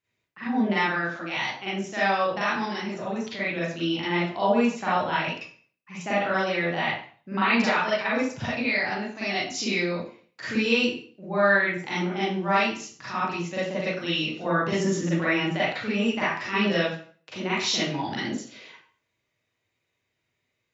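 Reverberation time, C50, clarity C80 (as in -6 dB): 0.45 s, -2.0 dB, 5.0 dB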